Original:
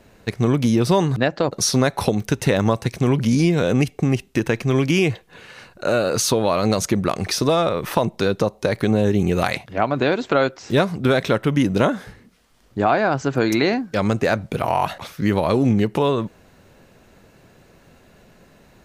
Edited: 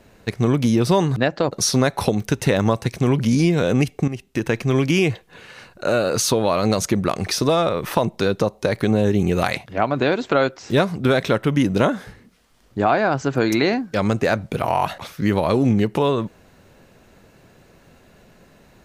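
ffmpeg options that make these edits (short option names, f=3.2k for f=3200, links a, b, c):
-filter_complex "[0:a]asplit=2[a][b];[a]atrim=end=4.08,asetpts=PTS-STARTPTS,afade=t=out:st=4.076:d=0.004:c=hsin:silence=0.237137[c];[b]atrim=start=4.08,asetpts=PTS-STARTPTS,afade=t=in:d=0.46:silence=0.237137[d];[c][d]concat=n=2:v=0:a=1"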